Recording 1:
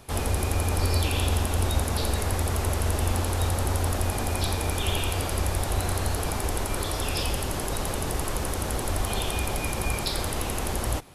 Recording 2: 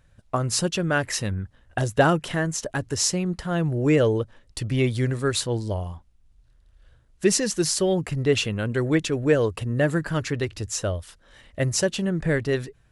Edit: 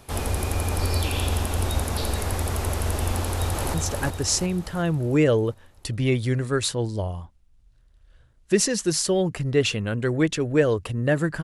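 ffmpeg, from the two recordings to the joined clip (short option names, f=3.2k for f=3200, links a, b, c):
-filter_complex "[0:a]apad=whole_dur=11.43,atrim=end=11.43,atrim=end=3.742[a];[1:a]atrim=start=2.458:end=10.15[b];[a][b]acrossfade=d=0.004:c1=hsin:c2=hsin,asplit=2[c][d];[d]afade=t=in:st=3.18:d=0.01,afade=t=out:st=3.74:d=0.01,aecho=0:1:360|720|1080|1440|1800|2160|2520:0.707946|0.353973|0.176986|0.0884932|0.0442466|0.0221233|0.0110617[e];[c][e]amix=inputs=2:normalize=0"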